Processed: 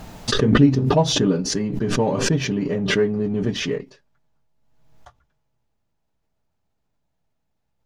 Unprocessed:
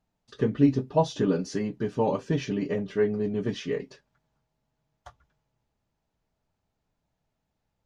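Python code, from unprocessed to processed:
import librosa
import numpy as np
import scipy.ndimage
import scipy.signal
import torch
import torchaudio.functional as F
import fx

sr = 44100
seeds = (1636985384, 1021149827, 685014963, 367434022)

p1 = fx.dynamic_eq(x, sr, hz=140.0, q=0.76, threshold_db=-35.0, ratio=4.0, max_db=4)
p2 = fx.backlash(p1, sr, play_db=-27.5)
p3 = p1 + (p2 * librosa.db_to_amplitude(-7.0))
y = fx.pre_swell(p3, sr, db_per_s=40.0)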